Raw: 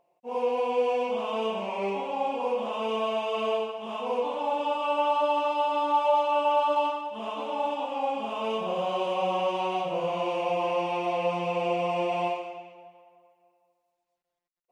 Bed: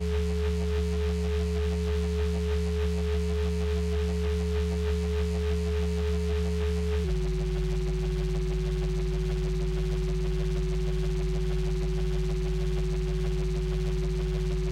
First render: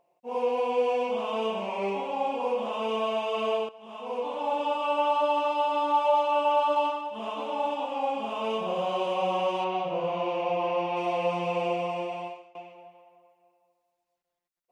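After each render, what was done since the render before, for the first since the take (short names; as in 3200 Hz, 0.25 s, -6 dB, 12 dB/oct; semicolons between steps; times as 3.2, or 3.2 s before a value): 3.69–4.53 fade in, from -15 dB; 9.64–10.97 air absorption 120 m; 11.59–12.55 fade out linear, to -21.5 dB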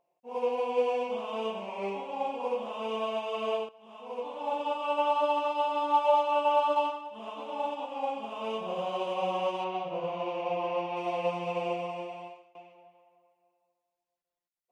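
upward expander 1.5:1, over -34 dBFS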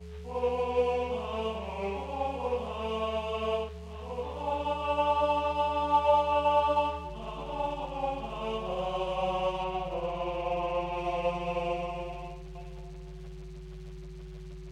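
add bed -15.5 dB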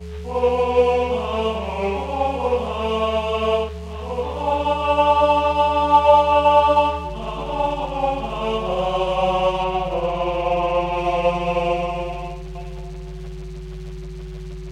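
gain +11 dB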